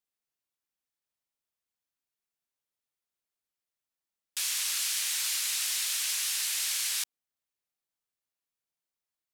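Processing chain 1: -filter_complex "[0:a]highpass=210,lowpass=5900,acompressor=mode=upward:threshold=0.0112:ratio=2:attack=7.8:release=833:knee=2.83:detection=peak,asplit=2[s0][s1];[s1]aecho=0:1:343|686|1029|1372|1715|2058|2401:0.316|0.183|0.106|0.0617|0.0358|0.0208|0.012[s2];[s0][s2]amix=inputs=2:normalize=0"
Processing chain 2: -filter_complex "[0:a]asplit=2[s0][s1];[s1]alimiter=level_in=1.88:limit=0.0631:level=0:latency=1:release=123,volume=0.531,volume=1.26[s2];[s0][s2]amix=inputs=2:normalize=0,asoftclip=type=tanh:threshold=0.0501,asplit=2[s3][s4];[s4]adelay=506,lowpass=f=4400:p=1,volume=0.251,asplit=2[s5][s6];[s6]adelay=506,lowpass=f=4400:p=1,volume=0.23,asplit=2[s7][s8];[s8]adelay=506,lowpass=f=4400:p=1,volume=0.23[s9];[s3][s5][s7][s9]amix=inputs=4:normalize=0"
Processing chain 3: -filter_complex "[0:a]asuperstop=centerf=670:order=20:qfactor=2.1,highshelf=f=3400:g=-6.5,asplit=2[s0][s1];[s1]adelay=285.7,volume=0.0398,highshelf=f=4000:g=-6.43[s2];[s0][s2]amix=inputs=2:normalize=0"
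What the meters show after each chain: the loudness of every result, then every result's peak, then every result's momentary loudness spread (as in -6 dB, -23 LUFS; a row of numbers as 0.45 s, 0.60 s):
-32.0 LUFS, -28.0 LUFS, -33.0 LUFS; -20.0 dBFS, -24.5 dBFS, -22.5 dBFS; 15 LU, 10 LU, 5 LU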